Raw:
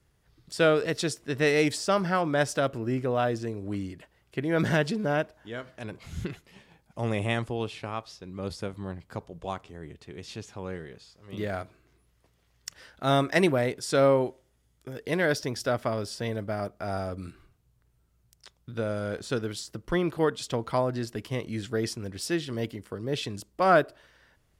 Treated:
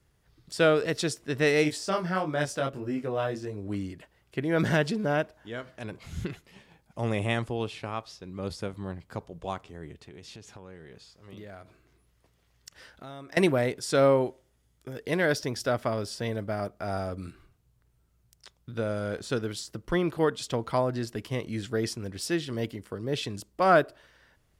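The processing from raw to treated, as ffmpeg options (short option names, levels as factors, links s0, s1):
-filter_complex "[0:a]asplit=3[s0][s1][s2];[s0]afade=t=out:st=1.63:d=0.02[s3];[s1]flanger=delay=19.5:depth=3.3:speed=1.7,afade=t=in:st=1.63:d=0.02,afade=t=out:st=3.68:d=0.02[s4];[s2]afade=t=in:st=3.68:d=0.02[s5];[s3][s4][s5]amix=inputs=3:normalize=0,asettb=1/sr,asplit=3[s6][s7][s8];[s6]atrim=end=10.054[s9];[s7]atrim=start=10.05:end=13.37,asetpts=PTS-STARTPTS,afade=t=in:d=0.004:c=qsin,afade=t=out:st=3.316:d=0.004:c=qsin,acompressor=threshold=0.00794:ratio=5:attack=3.2:release=140:knee=1:detection=peak[s10];[s8]atrim=start=13.366[s11];[s9][s10]acrossfade=d=0.004:c1=hsin:c2=qsin[s12];[s12][s11]acrossfade=d=0.004:c1=qsin:c2=hsin"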